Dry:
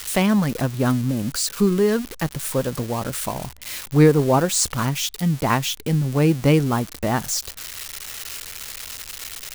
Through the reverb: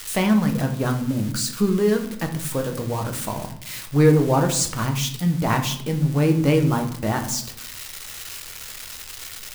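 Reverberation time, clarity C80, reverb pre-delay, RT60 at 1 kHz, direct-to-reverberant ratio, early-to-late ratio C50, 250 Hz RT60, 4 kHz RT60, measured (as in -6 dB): 0.70 s, 13.5 dB, 6 ms, 0.65 s, 4.0 dB, 10.0 dB, 1.0 s, 0.45 s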